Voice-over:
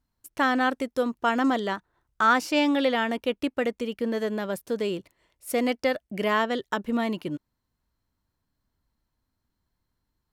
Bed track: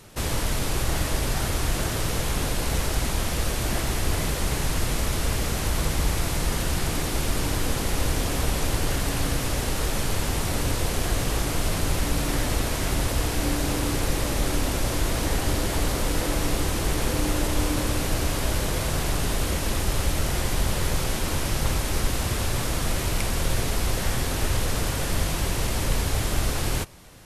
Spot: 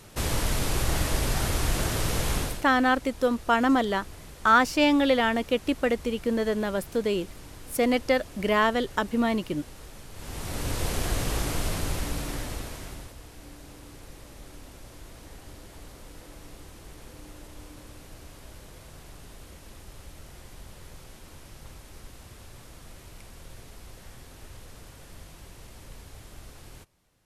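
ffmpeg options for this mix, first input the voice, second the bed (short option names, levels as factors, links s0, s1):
-filter_complex "[0:a]adelay=2250,volume=1.19[s0];[1:a]volume=5.96,afade=t=out:st=2.35:d=0.3:silence=0.11885,afade=t=in:st=10.13:d=0.74:silence=0.149624,afade=t=out:st=11.5:d=1.65:silence=0.11885[s1];[s0][s1]amix=inputs=2:normalize=0"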